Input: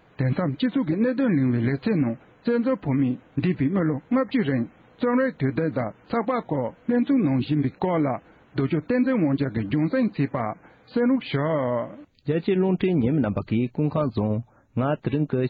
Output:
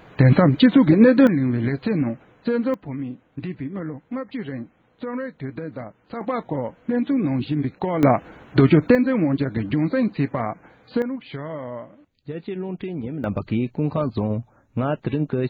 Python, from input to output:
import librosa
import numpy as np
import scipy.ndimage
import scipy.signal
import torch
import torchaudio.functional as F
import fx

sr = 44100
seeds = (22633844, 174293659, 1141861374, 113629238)

y = fx.gain(x, sr, db=fx.steps((0.0, 9.5), (1.27, 0.5), (2.74, -7.5), (6.21, -0.5), (8.03, 9.5), (8.95, 1.5), (11.02, -8.0), (13.24, 0.5)))